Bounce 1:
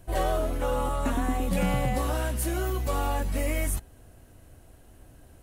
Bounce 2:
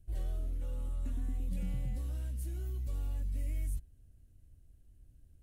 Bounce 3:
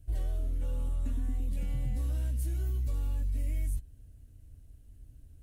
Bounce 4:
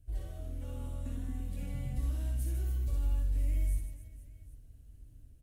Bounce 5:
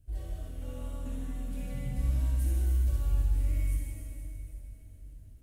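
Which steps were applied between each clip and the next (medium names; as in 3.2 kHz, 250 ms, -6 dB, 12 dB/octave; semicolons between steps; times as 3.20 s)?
amplifier tone stack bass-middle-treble 10-0-1; trim +1 dB
compression, threshold -35 dBFS, peak gain reduction 4.5 dB; comb of notches 180 Hz; trim +8 dB
level rider gain up to 3 dB; reverse bouncing-ball echo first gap 60 ms, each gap 1.5×, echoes 5; trim -6 dB
plate-style reverb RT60 3.1 s, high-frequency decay 0.9×, DRR -1.5 dB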